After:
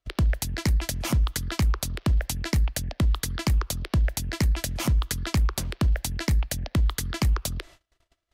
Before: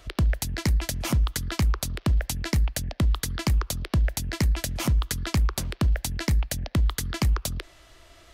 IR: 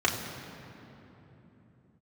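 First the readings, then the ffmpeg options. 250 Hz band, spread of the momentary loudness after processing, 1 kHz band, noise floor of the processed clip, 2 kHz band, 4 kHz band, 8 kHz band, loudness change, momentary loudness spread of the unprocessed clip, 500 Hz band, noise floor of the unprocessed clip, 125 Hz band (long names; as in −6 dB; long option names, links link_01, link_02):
0.0 dB, 2 LU, 0.0 dB, −73 dBFS, 0.0 dB, 0.0 dB, 0.0 dB, 0.0 dB, 2 LU, 0.0 dB, −54 dBFS, 0.0 dB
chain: -af "agate=range=-33dB:threshold=-47dB:ratio=16:detection=peak"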